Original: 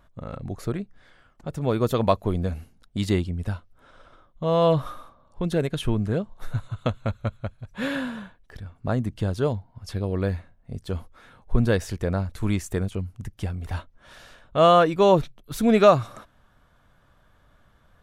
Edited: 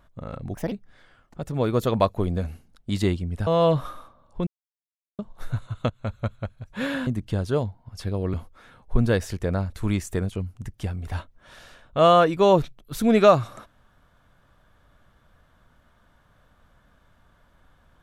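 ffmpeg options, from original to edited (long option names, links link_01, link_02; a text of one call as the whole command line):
ffmpeg -i in.wav -filter_complex "[0:a]asplit=9[link_01][link_02][link_03][link_04][link_05][link_06][link_07][link_08][link_09];[link_01]atrim=end=0.544[link_10];[link_02]atrim=start=0.54:end=0.79,asetpts=PTS-STARTPTS,asetrate=62181,aresample=44100,atrim=end_sample=7819,asetpts=PTS-STARTPTS[link_11];[link_03]atrim=start=0.786:end=3.542[link_12];[link_04]atrim=start=4.478:end=5.48,asetpts=PTS-STARTPTS,afade=type=out:start_time=0.998:duration=0.004:curve=hsin[link_13];[link_05]atrim=start=5.48:end=6.2,asetpts=PTS-STARTPTS,volume=0[link_14];[link_06]atrim=start=6.2:end=6.91,asetpts=PTS-STARTPTS,afade=type=in:duration=0.004:curve=hsin,afade=type=out:start_time=0.706:duration=0.004:curve=hsin:silence=0.112202[link_15];[link_07]atrim=start=6.91:end=8.082,asetpts=PTS-STARTPTS,afade=type=in:duration=0.25:silence=0.112202[link_16];[link_08]atrim=start=8.958:end=10.232[link_17];[link_09]atrim=start=10.928[link_18];[link_10][link_11]acrossfade=duration=0.004:curve1=hsin:curve2=hsin[link_19];[link_19][link_12]acrossfade=duration=0.004:curve1=hsin:curve2=hsin[link_20];[link_13][link_14][link_15][link_16]concat=n=4:v=0:a=1[link_21];[link_20][link_21]acrossfade=duration=0.004:curve1=hsin:curve2=hsin[link_22];[link_22][link_17]acrossfade=duration=0.004:curve1=hsin:curve2=hsin[link_23];[link_23][link_18]acrossfade=duration=0.004:curve1=hsin:curve2=hsin" out.wav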